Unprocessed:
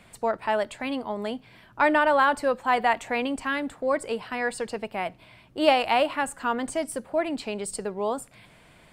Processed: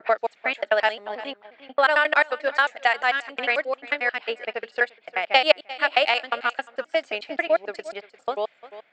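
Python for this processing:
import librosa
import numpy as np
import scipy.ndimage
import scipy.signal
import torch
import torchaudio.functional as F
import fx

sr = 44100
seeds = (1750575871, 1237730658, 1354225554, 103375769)

p1 = fx.block_reorder(x, sr, ms=89.0, group=5)
p2 = scipy.signal.sosfilt(scipy.signal.butter(2, 790.0, 'highpass', fs=sr, output='sos'), p1)
p3 = fx.env_lowpass(p2, sr, base_hz=1800.0, full_db=-20.0)
p4 = scipy.signal.sosfilt(scipy.signal.butter(12, 7500.0, 'lowpass', fs=sr, output='sos'), p3)
p5 = fx.peak_eq(p4, sr, hz=1000.0, db=-13.5, octaves=0.46)
p6 = fx.rider(p5, sr, range_db=10, speed_s=2.0)
p7 = p5 + (p6 * librosa.db_to_amplitude(2.5))
p8 = p7 + 10.0 ** (-14.0 / 20.0) * np.pad(p7, (int(349 * sr / 1000.0), 0))[:len(p7)]
p9 = fx.transient(p8, sr, attack_db=5, sustain_db=-8)
y = p9 * librosa.db_to_amplitude(-1.5)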